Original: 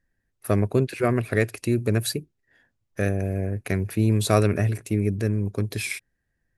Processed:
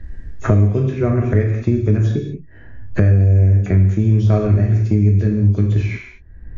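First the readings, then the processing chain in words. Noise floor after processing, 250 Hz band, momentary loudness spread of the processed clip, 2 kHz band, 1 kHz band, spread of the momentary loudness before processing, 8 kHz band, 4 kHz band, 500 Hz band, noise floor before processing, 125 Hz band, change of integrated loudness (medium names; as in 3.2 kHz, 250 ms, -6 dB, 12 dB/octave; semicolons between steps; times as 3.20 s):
-39 dBFS, +6.5 dB, 11 LU, -1.0 dB, 0.0 dB, 9 LU, under -10 dB, no reading, +3.0 dB, -76 dBFS, +11.5 dB, +8.5 dB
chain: knee-point frequency compression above 2.5 kHz 1.5:1; RIAA curve playback; gated-style reverb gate 230 ms falling, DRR 0 dB; three bands compressed up and down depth 100%; trim -4.5 dB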